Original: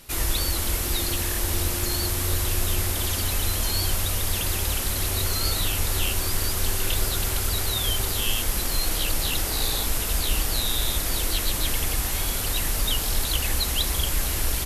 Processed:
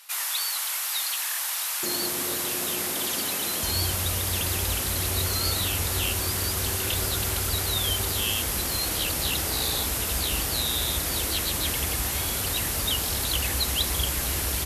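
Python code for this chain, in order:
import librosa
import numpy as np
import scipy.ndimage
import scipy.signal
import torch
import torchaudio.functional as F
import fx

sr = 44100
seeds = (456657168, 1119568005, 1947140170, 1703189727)

y = fx.highpass(x, sr, hz=fx.steps((0.0, 860.0), (1.83, 170.0), (3.63, 55.0)), slope=24)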